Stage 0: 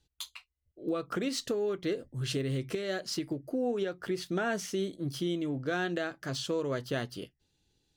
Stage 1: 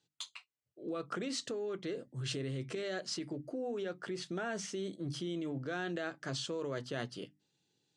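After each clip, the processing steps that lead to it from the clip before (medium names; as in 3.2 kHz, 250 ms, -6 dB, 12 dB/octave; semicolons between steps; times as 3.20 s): elliptic band-pass 130–8400 Hz, stop band 40 dB; hum notches 50/100/150/200/250/300 Hz; in parallel at -2 dB: compressor with a negative ratio -35 dBFS, ratio -0.5; on the sum: trim -8.5 dB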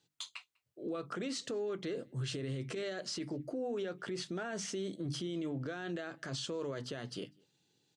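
peak limiter -34 dBFS, peak gain reduction 10.5 dB; echo from a far wall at 34 m, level -29 dB; trim +3.5 dB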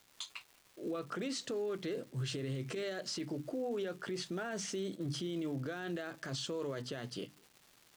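crackle 560 per s -50 dBFS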